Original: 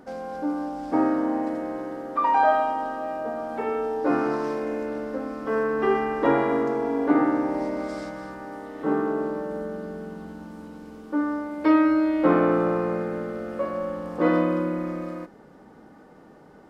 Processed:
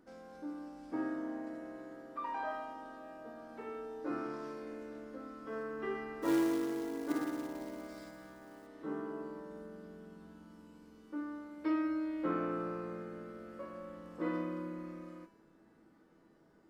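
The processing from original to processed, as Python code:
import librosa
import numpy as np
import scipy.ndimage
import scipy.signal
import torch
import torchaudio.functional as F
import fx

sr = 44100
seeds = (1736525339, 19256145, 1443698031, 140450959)

y = fx.peak_eq(x, sr, hz=730.0, db=-7.0, octaves=0.85)
y = fx.comb_fb(y, sr, f0_hz=330.0, decay_s=1.0, harmonics='all', damping=0.0, mix_pct=90)
y = fx.quant_float(y, sr, bits=2, at=(6.22, 8.67))
y = F.gain(torch.from_numpy(y), 4.0).numpy()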